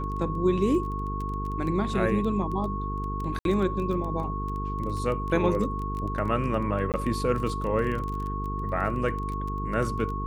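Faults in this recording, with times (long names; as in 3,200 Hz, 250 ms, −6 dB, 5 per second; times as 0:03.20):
mains buzz 50 Hz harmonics 9 −32 dBFS
surface crackle 18 per second −31 dBFS
whistle 1,100 Hz −33 dBFS
0:03.39–0:03.45: drop-out 62 ms
0:06.92–0:06.94: drop-out 18 ms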